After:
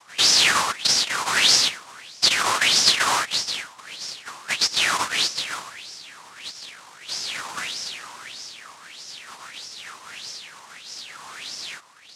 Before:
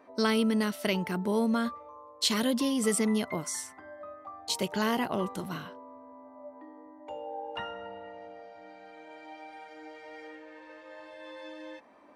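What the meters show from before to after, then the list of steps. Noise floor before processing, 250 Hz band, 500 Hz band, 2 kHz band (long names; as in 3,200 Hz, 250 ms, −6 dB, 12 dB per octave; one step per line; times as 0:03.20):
−52 dBFS, −13.0 dB, −6.0 dB, +14.0 dB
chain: cochlear-implant simulation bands 1
auto-filter bell 1.6 Hz 980–5,400 Hz +18 dB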